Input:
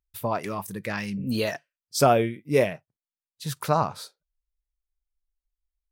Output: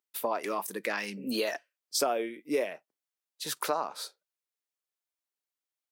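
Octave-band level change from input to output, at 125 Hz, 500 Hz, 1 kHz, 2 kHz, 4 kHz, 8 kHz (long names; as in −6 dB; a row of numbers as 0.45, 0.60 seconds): −23.0, −7.0, −7.5, −3.5, −1.0, −0.5 decibels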